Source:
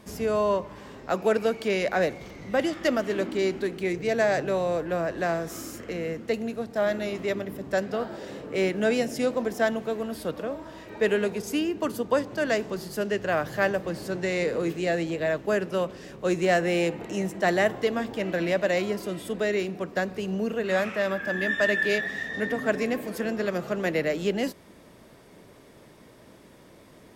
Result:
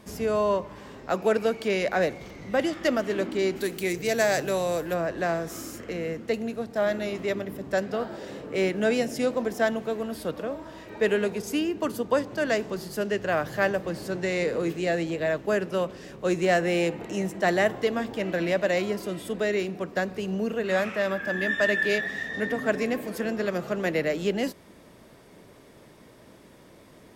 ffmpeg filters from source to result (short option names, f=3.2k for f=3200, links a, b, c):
-filter_complex "[0:a]asplit=3[a][b][c];[a]afade=t=out:st=3.55:d=0.02[d];[b]aemphasis=mode=production:type=75fm,afade=t=in:st=3.55:d=0.02,afade=t=out:st=4.93:d=0.02[e];[c]afade=t=in:st=4.93:d=0.02[f];[d][e][f]amix=inputs=3:normalize=0"